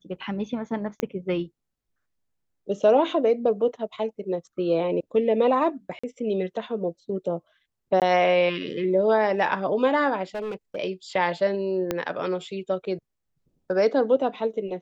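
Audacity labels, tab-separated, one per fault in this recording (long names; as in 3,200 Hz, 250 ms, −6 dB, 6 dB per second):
1.000000	1.000000	click −13 dBFS
5.990000	6.040000	drop-out 45 ms
8.000000	8.020000	drop-out 18 ms
10.350000	10.770000	clipping −27.5 dBFS
11.910000	11.910000	click −11 dBFS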